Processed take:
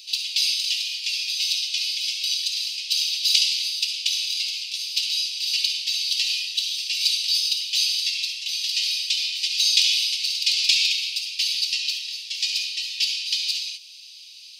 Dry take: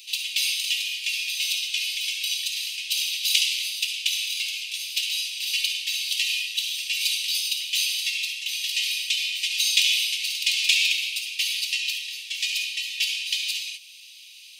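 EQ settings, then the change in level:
parametric band 4,800 Hz +15 dB 0.92 octaves
−7.5 dB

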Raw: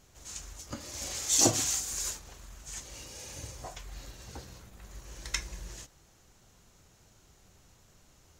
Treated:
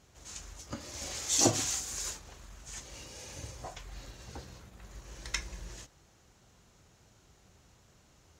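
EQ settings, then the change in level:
high-pass filter 41 Hz
high-shelf EQ 9,000 Hz −9.5 dB
0.0 dB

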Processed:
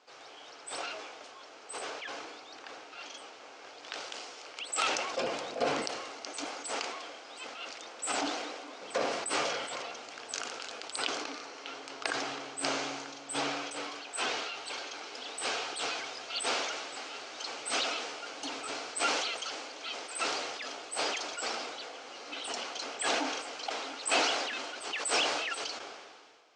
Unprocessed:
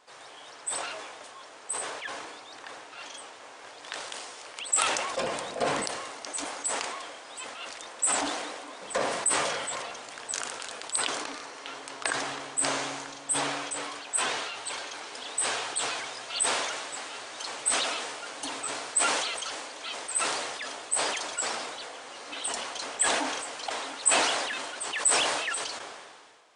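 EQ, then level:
loudspeaker in its box 120–6,100 Hz, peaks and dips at 120 Hz −4 dB, 180 Hz −9 dB, 590 Hz −3 dB, 1,000 Hz −7 dB, 1,800 Hz −7 dB, 3,600 Hz −4 dB
0.0 dB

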